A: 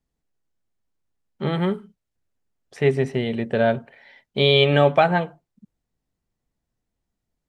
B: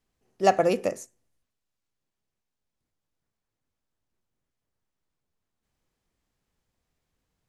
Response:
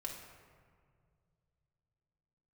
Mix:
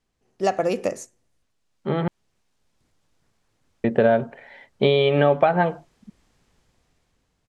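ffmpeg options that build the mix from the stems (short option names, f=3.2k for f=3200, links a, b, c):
-filter_complex "[0:a]lowshelf=f=170:g=-10,acompressor=threshold=-22dB:ratio=5,lowpass=f=1.1k:p=1,adelay=450,volume=-3.5dB,asplit=3[a][b][c];[a]atrim=end=2.08,asetpts=PTS-STARTPTS,afade=t=out:st=2.076:d=0.004:c=hsin[d];[b]atrim=start=2.08:end=3.84,asetpts=PTS-STARTPTS,volume=0[e];[c]atrim=start=3.84,asetpts=PTS-STARTPTS,afade=t=in:d=0.004:c=hsin[f];[d][e][f]concat=n=3:v=0:a=1[g];[1:a]lowpass=9.4k,acompressor=threshold=-23dB:ratio=2.5,volume=3dB[h];[g][h]amix=inputs=2:normalize=0,dynaudnorm=f=220:g=13:m=13.5dB"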